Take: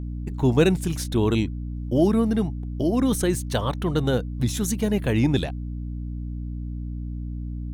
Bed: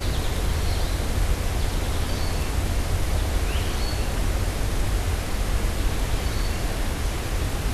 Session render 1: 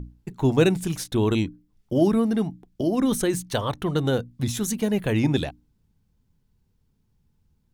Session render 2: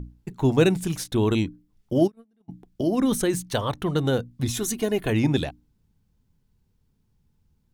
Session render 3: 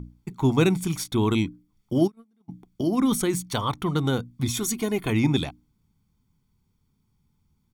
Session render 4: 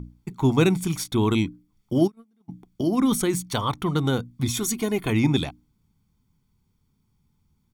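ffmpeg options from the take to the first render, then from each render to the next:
-af "bandreject=f=60:t=h:w=6,bandreject=f=120:t=h:w=6,bandreject=f=180:t=h:w=6,bandreject=f=240:t=h:w=6,bandreject=f=300:t=h:w=6"
-filter_complex "[0:a]asplit=3[a][b][c];[a]afade=t=out:st=2.06:d=0.02[d];[b]agate=range=-44dB:threshold=-16dB:ratio=16:release=100:detection=peak,afade=t=in:st=2.06:d=0.02,afade=t=out:st=2.48:d=0.02[e];[c]afade=t=in:st=2.48:d=0.02[f];[d][e][f]amix=inputs=3:normalize=0,asettb=1/sr,asplit=3[g][h][i];[g]atrim=end=4.454[j];[h]atrim=start=4.45:end=5.1,asetpts=PTS-STARTPTS,afade=t=in:d=0.004:c=qsin,afade=t=out:st=0.646:d=0.004:c=qsin,aecho=1:1:2.8:0.61,atrim=end_sample=28665[k];[i]atrim=start=5.096[l];[j][k]acrossfade=d=0.004:c1=hsin:c2=qsin[m];[m][l]acrossfade=d=0.004:c1=qsin:c2=hsin"
-af "lowshelf=f=92:g=-10,aecho=1:1:0.9:0.55"
-af "volume=1dB"

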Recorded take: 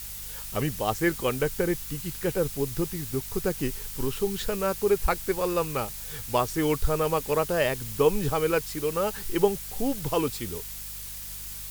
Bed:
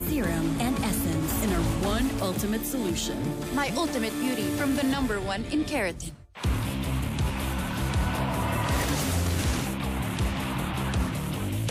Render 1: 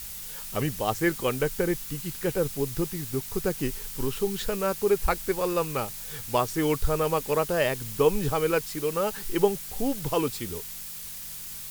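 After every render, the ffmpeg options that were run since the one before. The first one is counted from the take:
-af "bandreject=f=50:t=h:w=4,bandreject=f=100:t=h:w=4"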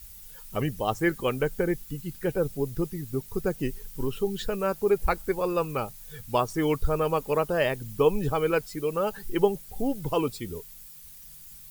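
-af "afftdn=nr=13:nf=-39"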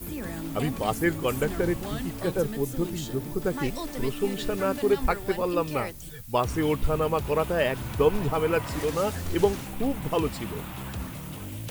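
-filter_complex "[1:a]volume=-8dB[a];[0:a][a]amix=inputs=2:normalize=0"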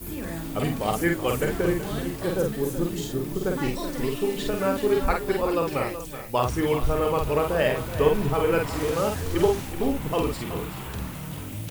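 -filter_complex "[0:a]asplit=2[a][b];[b]adelay=48,volume=-3.5dB[c];[a][c]amix=inputs=2:normalize=0,asplit=2[d][e];[e]aecho=0:1:376:0.266[f];[d][f]amix=inputs=2:normalize=0"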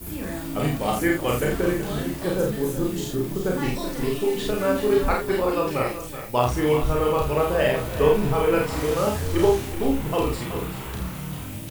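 -filter_complex "[0:a]asplit=2[a][b];[b]adelay=33,volume=-3dB[c];[a][c]amix=inputs=2:normalize=0,aecho=1:1:205:0.0708"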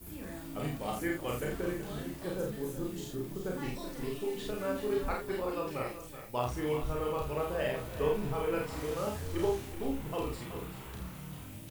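-af "volume=-12dB"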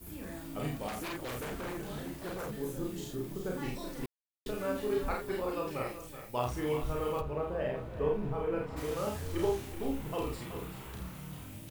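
-filter_complex "[0:a]asettb=1/sr,asplit=3[a][b][c];[a]atrim=end=0.884[d];[b]atrim=start=0.88:end=2.58,asetpts=PTS-STARTPTS,afade=t=in:d=0.004:c=qsin,afade=t=out:st=1.696:d=0.004:c=qsin,aeval=exprs='0.0211*(abs(mod(val(0)/0.0211+3,4)-2)-1)':c=same[e];[c]atrim=start=2.576[f];[d][e]acrossfade=d=0.004:c1=hsin:c2=qsin[g];[g][f]acrossfade=d=0.004:c1=qsin:c2=hsin,asplit=3[h][i][j];[h]afade=t=out:st=7.2:d=0.02[k];[i]lowpass=f=1.1k:p=1,afade=t=in:st=7.2:d=0.02,afade=t=out:st=8.76:d=0.02[l];[j]afade=t=in:st=8.76:d=0.02[m];[k][l][m]amix=inputs=3:normalize=0,asplit=3[n][o][p];[n]atrim=end=4.06,asetpts=PTS-STARTPTS,afade=t=out:st=4.056:d=0.004:c=hsin[q];[o]atrim=start=4.06:end=4.46,asetpts=PTS-STARTPTS,volume=0[r];[p]atrim=start=4.46,asetpts=PTS-STARTPTS,afade=t=in:d=0.004:c=hsin[s];[q][r][s]concat=n=3:v=0:a=1"

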